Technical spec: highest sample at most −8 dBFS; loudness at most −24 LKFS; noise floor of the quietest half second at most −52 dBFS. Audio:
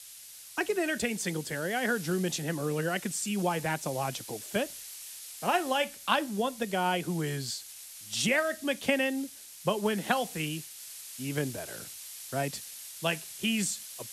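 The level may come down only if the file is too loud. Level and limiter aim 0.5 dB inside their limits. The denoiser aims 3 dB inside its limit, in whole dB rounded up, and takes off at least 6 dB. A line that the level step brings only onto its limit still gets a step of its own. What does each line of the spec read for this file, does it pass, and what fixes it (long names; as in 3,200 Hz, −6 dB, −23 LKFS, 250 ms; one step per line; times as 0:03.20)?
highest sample −11.5 dBFS: in spec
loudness −31.5 LKFS: in spec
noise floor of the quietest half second −48 dBFS: out of spec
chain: broadband denoise 7 dB, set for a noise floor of −48 dBFS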